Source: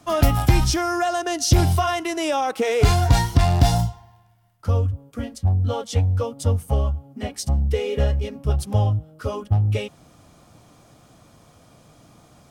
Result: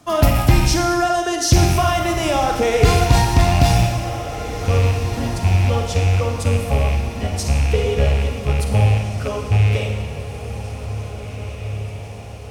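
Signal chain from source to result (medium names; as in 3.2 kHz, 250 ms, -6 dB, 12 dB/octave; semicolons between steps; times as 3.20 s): rattle on loud lows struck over -20 dBFS, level -21 dBFS; echo that smears into a reverb 1875 ms, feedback 55%, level -11 dB; Schroeder reverb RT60 1.3 s, DRR 3 dB; trim +2 dB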